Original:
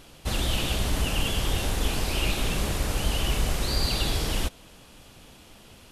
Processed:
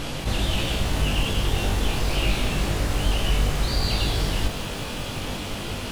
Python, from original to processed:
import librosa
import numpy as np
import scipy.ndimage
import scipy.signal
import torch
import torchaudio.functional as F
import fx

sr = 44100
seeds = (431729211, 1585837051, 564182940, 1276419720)

p1 = fx.peak_eq(x, sr, hz=120.0, db=5.0, octaves=0.34)
p2 = fx.over_compress(p1, sr, threshold_db=-41.0, ratio=-0.5)
p3 = p1 + (p2 * librosa.db_to_amplitude(1.5))
p4 = fx.high_shelf(p3, sr, hz=7800.0, db=-9.5)
p5 = p4 + fx.room_flutter(p4, sr, wall_m=3.5, rt60_s=0.2, dry=0)
p6 = fx.echo_crushed(p5, sr, ms=181, feedback_pct=80, bits=6, wet_db=-15)
y = p6 * librosa.db_to_amplitude(1.5)